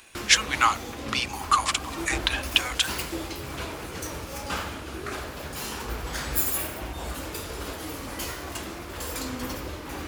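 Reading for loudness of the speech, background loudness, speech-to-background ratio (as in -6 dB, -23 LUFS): -24.5 LUFS, -32.5 LUFS, 8.0 dB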